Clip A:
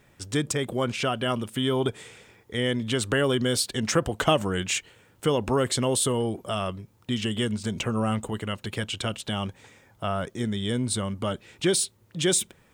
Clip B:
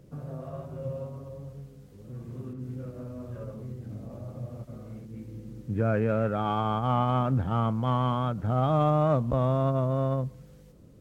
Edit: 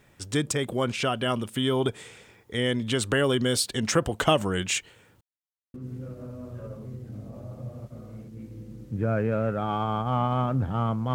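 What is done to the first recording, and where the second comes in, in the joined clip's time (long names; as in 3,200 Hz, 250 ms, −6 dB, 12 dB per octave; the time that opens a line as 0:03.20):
clip A
0:05.21–0:05.74: silence
0:05.74: continue with clip B from 0:02.51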